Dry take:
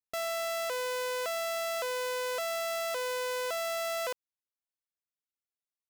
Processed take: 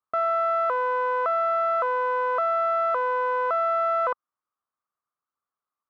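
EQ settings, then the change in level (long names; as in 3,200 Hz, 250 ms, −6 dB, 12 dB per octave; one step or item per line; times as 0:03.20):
high-pass filter 80 Hz 6 dB per octave
low-pass with resonance 1,200 Hz, resonance Q 7.9
+4.5 dB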